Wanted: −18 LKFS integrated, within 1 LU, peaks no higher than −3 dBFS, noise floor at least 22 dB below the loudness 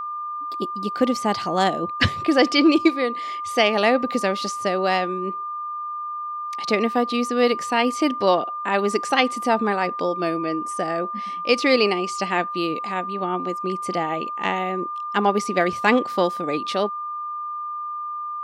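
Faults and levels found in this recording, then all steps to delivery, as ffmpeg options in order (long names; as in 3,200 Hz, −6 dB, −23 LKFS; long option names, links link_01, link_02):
interfering tone 1,200 Hz; level of the tone −27 dBFS; integrated loudness −22.5 LKFS; sample peak −4.0 dBFS; target loudness −18.0 LKFS
→ -af "bandreject=frequency=1200:width=30"
-af "volume=4.5dB,alimiter=limit=-3dB:level=0:latency=1"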